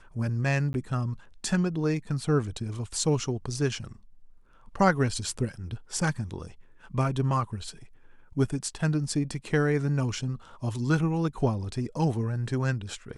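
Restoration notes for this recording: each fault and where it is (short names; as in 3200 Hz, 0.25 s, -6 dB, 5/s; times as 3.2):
0.73–0.74 gap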